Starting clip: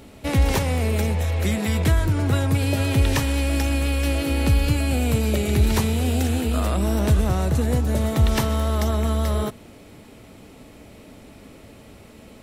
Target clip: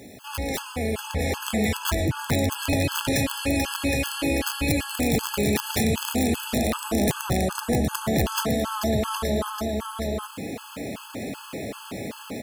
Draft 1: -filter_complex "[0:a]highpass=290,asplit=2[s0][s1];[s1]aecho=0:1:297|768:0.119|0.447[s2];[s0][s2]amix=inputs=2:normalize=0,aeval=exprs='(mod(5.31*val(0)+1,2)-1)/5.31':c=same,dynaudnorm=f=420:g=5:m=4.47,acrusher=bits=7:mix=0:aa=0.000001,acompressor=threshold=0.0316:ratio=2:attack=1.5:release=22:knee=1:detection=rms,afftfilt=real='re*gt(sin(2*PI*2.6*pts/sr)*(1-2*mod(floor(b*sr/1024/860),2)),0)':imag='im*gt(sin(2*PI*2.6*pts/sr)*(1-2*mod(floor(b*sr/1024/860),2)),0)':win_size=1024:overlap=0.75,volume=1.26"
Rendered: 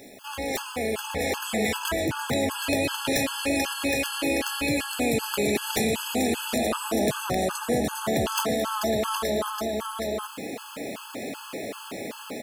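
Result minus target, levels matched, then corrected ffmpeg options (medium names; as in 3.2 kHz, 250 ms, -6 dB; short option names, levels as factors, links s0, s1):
125 Hz band -7.5 dB
-filter_complex "[0:a]highpass=130,asplit=2[s0][s1];[s1]aecho=0:1:297|768:0.119|0.447[s2];[s0][s2]amix=inputs=2:normalize=0,aeval=exprs='(mod(5.31*val(0)+1,2)-1)/5.31':c=same,dynaudnorm=f=420:g=5:m=4.47,acrusher=bits=7:mix=0:aa=0.000001,acompressor=threshold=0.0316:ratio=2:attack=1.5:release=22:knee=1:detection=rms,afftfilt=real='re*gt(sin(2*PI*2.6*pts/sr)*(1-2*mod(floor(b*sr/1024/860),2)),0)':imag='im*gt(sin(2*PI*2.6*pts/sr)*(1-2*mod(floor(b*sr/1024/860),2)),0)':win_size=1024:overlap=0.75,volume=1.26"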